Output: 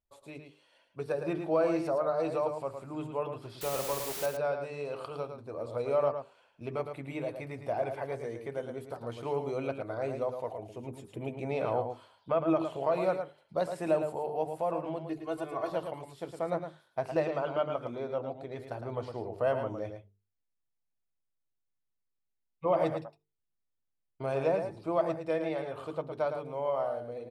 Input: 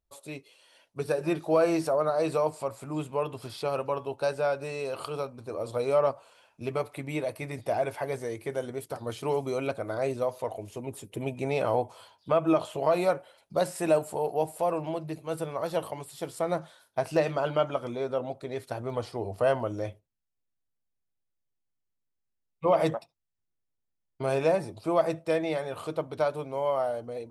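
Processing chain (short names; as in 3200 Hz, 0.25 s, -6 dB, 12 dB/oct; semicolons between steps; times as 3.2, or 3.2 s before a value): LPF 2400 Hz 6 dB/oct; notches 50/100/150/200/250/300/350/400/450 Hz; 3.61–4.26 requantised 6-bit, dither triangular; 15.09–15.7 comb 2.8 ms, depth 92%; echo 0.11 s -7.5 dB; gain -4 dB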